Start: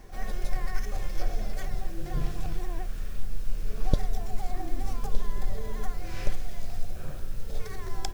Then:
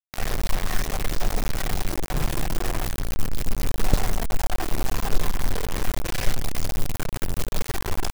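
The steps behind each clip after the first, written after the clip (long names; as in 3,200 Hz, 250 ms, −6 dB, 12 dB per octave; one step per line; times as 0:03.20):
bit reduction 5 bits
level +3 dB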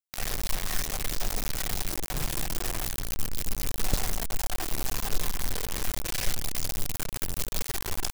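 high-shelf EQ 2,700 Hz +10.5 dB
level −7.5 dB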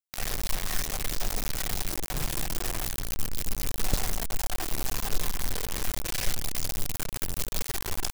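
no processing that can be heard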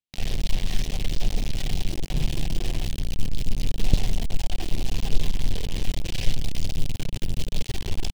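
drawn EQ curve 170 Hz 0 dB, 830 Hz −12 dB, 1,300 Hz −21 dB, 3,000 Hz −4 dB, 14,000 Hz −24 dB
level +8.5 dB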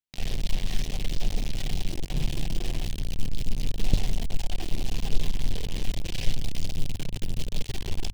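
mains-hum notches 50/100 Hz
level −2.5 dB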